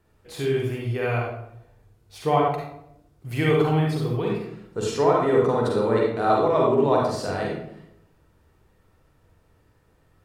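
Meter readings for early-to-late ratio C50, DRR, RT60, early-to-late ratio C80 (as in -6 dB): 0.0 dB, -2.5 dB, 0.75 s, 4.5 dB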